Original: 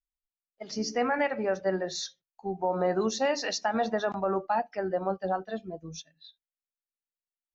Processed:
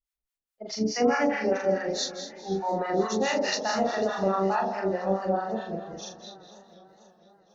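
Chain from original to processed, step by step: flutter echo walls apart 7.1 m, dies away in 1.1 s; harmonic tremolo 4.7 Hz, depth 100%, crossover 770 Hz; warbling echo 0.492 s, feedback 55%, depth 114 cents, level -18 dB; gain +3.5 dB

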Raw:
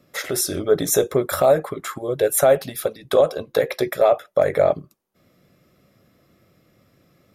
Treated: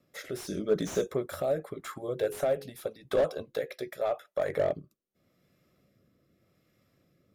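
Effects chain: 1.97–2.68 de-hum 46.61 Hz, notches 11; 3.54–4.49 low shelf 440 Hz -6.5 dB; rotary speaker horn 0.85 Hz; 0.47–1.06 thirty-one-band EQ 100 Hz -11 dB, 200 Hz +10 dB, 800 Hz -11 dB, 6300 Hz +11 dB; slew limiter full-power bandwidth 140 Hz; gain -8.5 dB

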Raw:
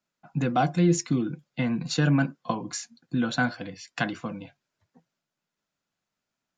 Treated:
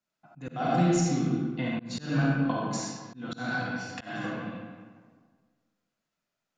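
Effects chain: digital reverb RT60 1.6 s, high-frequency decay 0.65×, pre-delay 10 ms, DRR -4 dB; auto swell 0.251 s; gain -5.5 dB

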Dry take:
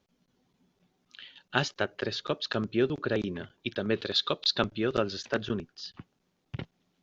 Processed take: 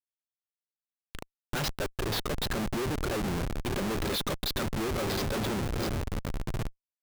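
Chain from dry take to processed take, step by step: diffused feedback echo 0.959 s, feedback 53%, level -13.5 dB; Schmitt trigger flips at -35.5 dBFS; gain +2.5 dB

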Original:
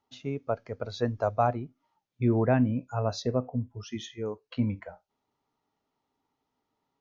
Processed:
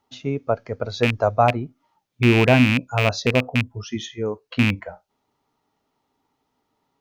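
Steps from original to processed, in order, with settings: rattling part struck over -26 dBFS, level -17 dBFS; gain +8 dB

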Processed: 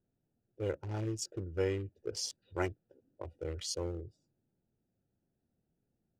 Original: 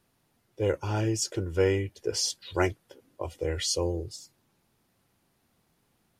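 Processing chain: Wiener smoothing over 41 samples; gain -8 dB

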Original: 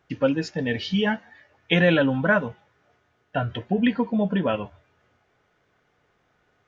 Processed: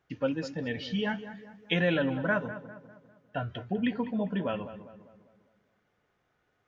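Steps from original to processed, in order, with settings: 1.09–1.73 high shelf 4000 Hz +9 dB; darkening echo 0.2 s, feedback 48%, low-pass 1900 Hz, level -12 dB; gain -8 dB

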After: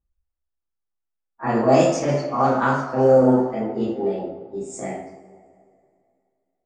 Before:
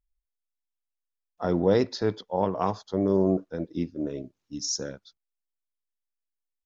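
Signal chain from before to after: delay-line pitch shifter +5 st; two-slope reverb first 0.61 s, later 2.5 s, from -16 dB, DRR -8 dB; low-pass opened by the level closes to 1300 Hz, open at -11 dBFS

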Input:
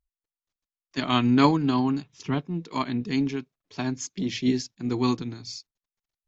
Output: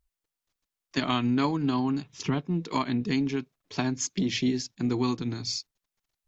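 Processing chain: compressor 4:1, threshold -31 dBFS, peak gain reduction 15 dB; gain +6.5 dB

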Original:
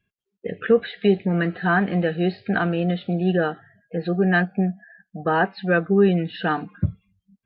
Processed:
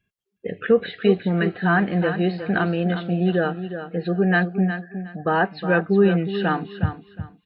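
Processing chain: feedback echo 0.363 s, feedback 22%, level -10 dB

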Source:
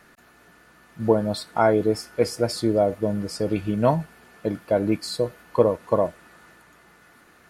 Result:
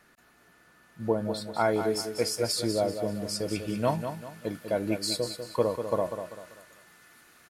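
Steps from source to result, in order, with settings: high shelf 2200 Hz +3 dB, from 1.59 s +11.5 dB; feedback echo 0.195 s, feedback 37%, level -8.5 dB; gain -8 dB

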